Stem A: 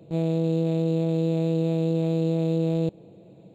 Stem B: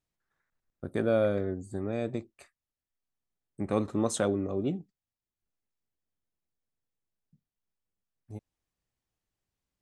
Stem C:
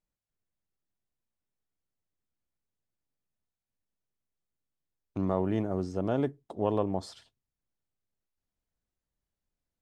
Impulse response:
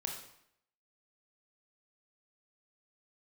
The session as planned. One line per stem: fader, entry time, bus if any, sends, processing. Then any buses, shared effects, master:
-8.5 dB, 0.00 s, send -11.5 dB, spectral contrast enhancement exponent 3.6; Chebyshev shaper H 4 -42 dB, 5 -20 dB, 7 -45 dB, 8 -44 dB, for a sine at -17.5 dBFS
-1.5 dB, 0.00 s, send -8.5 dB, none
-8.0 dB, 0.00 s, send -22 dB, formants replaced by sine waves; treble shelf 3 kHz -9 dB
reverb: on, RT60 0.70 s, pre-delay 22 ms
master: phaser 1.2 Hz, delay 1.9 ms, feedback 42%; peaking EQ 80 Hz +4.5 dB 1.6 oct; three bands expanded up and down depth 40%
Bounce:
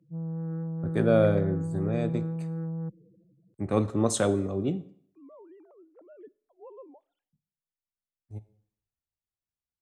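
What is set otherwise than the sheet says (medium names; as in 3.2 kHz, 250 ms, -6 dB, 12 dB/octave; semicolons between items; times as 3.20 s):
stem A: send off; stem C -8.0 dB -> -15.5 dB; master: missing phaser 1.2 Hz, delay 1.9 ms, feedback 42%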